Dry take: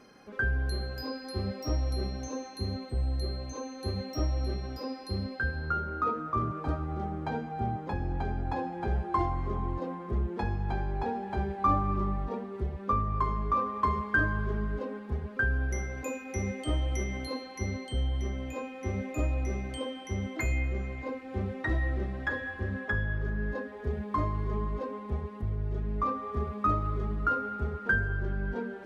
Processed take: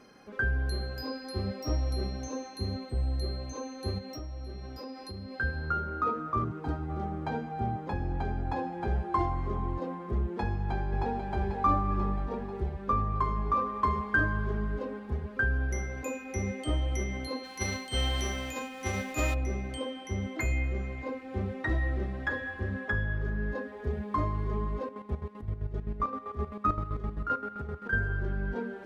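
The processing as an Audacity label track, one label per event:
3.980000	5.340000	downward compressor 4 to 1, threshold −38 dBFS
6.440000	6.900000	notch comb filter 590 Hz
10.430000	11.190000	delay throw 490 ms, feedback 70%, level −7.5 dB
17.430000	19.330000	spectral envelope flattened exponent 0.6
24.830000	27.930000	square-wave tremolo 7.7 Hz, depth 65%, duty 45%

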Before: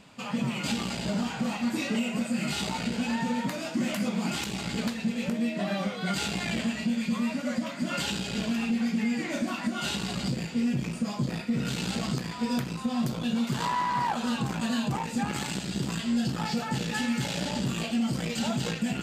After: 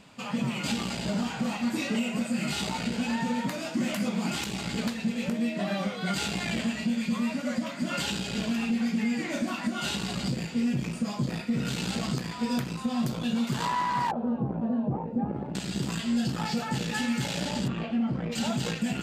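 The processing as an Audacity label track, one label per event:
14.110000	15.550000	low-pass with resonance 570 Hz, resonance Q 1.5
17.670000	18.310000	low-pass filter 2,300 Hz → 1,400 Hz

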